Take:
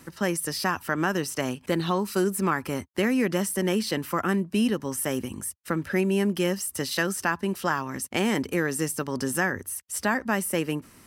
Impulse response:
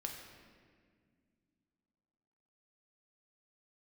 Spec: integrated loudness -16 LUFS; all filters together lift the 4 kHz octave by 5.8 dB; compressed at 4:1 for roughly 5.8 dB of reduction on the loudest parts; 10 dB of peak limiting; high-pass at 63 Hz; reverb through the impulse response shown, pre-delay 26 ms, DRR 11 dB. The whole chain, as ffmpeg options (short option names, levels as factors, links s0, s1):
-filter_complex "[0:a]highpass=63,equalizer=f=4000:t=o:g=8,acompressor=threshold=0.0501:ratio=4,alimiter=limit=0.0891:level=0:latency=1,asplit=2[s0][s1];[1:a]atrim=start_sample=2205,adelay=26[s2];[s1][s2]afir=irnorm=-1:irlink=0,volume=0.316[s3];[s0][s3]amix=inputs=2:normalize=0,volume=5.96"